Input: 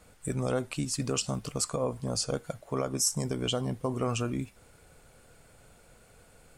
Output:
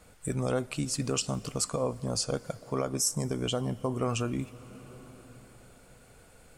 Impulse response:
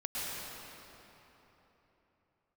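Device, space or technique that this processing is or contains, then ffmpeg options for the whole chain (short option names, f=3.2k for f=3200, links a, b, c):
ducked reverb: -filter_complex "[0:a]asplit=3[a][b][c];[1:a]atrim=start_sample=2205[d];[b][d]afir=irnorm=-1:irlink=0[e];[c]apad=whole_len=289975[f];[e][f]sidechaincompress=threshold=-36dB:ratio=8:attack=16:release=773,volume=-15.5dB[g];[a][g]amix=inputs=2:normalize=0,asettb=1/sr,asplit=3[h][i][j];[h]atrim=end=3.014[k];[i]atrim=start=3.01:end=4.02,asetpts=PTS-STARTPTS,afade=t=in:d=0.004:c=qsin,afade=t=out:st=1.006:d=0.004:c=qsin,equalizer=f=3.7k:t=o:w=1.6:g=-3[l];[j]atrim=start=4.016[m];[k][l]acrossfade=d=0.004:c1=hsin:c2=qsin[n];[n][m]acrossfade=d=0.004:c1=qsin:c2=hsin"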